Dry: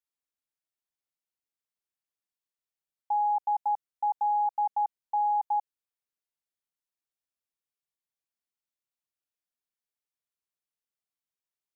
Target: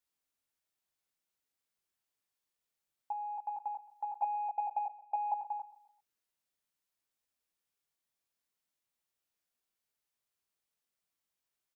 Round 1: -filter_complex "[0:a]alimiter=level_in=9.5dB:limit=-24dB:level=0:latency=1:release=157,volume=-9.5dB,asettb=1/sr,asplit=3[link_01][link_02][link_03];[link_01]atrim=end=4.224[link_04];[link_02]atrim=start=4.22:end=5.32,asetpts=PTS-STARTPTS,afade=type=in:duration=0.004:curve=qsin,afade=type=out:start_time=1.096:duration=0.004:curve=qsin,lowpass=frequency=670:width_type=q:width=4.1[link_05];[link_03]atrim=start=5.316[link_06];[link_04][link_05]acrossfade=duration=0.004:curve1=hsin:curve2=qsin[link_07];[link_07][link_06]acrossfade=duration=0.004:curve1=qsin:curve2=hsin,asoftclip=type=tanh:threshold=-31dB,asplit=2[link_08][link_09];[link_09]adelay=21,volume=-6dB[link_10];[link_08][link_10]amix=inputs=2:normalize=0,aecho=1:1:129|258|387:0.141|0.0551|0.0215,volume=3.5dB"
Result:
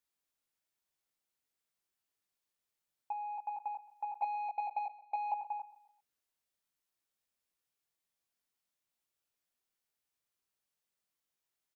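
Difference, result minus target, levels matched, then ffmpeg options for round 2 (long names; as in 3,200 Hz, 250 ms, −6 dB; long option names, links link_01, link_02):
soft clipping: distortion +14 dB
-filter_complex "[0:a]alimiter=level_in=9.5dB:limit=-24dB:level=0:latency=1:release=157,volume=-9.5dB,asettb=1/sr,asplit=3[link_01][link_02][link_03];[link_01]atrim=end=4.224[link_04];[link_02]atrim=start=4.22:end=5.32,asetpts=PTS-STARTPTS,afade=type=in:duration=0.004:curve=qsin,afade=type=out:start_time=1.096:duration=0.004:curve=qsin,lowpass=frequency=670:width_type=q:width=4.1[link_05];[link_03]atrim=start=5.316[link_06];[link_04][link_05]acrossfade=duration=0.004:curve1=hsin:curve2=qsin[link_07];[link_07][link_06]acrossfade=duration=0.004:curve1=qsin:curve2=hsin,asoftclip=type=tanh:threshold=-23dB,asplit=2[link_08][link_09];[link_09]adelay=21,volume=-6dB[link_10];[link_08][link_10]amix=inputs=2:normalize=0,aecho=1:1:129|258|387:0.141|0.0551|0.0215,volume=3.5dB"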